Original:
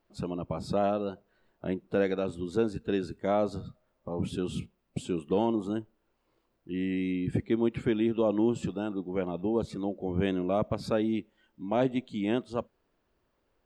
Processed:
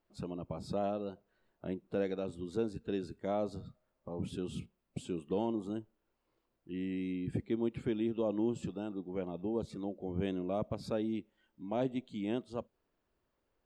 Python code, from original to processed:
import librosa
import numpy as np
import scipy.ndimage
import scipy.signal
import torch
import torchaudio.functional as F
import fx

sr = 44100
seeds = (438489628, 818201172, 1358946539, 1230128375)

y = fx.dynamic_eq(x, sr, hz=1600.0, q=1.0, threshold_db=-46.0, ratio=4.0, max_db=-5)
y = F.gain(torch.from_numpy(y), -6.5).numpy()